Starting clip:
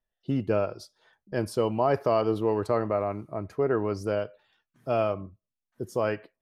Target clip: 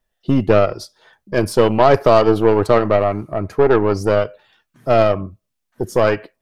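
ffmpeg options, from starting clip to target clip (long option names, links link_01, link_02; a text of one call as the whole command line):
ffmpeg -i in.wav -af "acontrast=54,aeval=exprs='0.473*(cos(1*acos(clip(val(0)/0.473,-1,1)))-cos(1*PI/2))+0.0473*(cos(6*acos(clip(val(0)/0.473,-1,1)))-cos(6*PI/2))':channel_layout=same,volume=6dB" out.wav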